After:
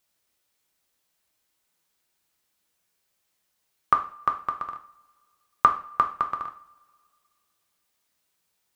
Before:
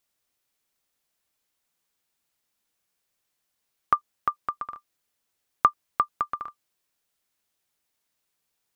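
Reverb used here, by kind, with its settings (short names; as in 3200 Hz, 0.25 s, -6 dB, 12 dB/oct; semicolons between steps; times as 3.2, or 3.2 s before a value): two-slope reverb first 0.41 s, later 2.2 s, from -26 dB, DRR 4 dB; gain +2 dB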